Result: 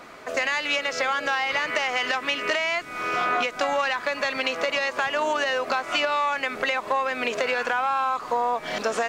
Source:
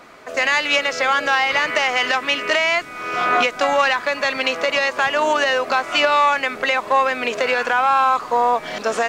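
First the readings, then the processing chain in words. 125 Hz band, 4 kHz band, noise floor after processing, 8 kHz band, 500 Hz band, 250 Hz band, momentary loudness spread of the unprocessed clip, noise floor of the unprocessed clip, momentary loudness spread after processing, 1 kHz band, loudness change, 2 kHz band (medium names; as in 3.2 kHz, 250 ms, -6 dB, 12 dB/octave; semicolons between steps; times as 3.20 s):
-4.5 dB, -6.5 dB, -38 dBFS, -5.5 dB, -6.0 dB, -5.0 dB, 5 LU, -34 dBFS, 3 LU, -7.0 dB, -6.5 dB, -6.5 dB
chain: compression 3:1, threshold -23 dBFS, peak gain reduction 9 dB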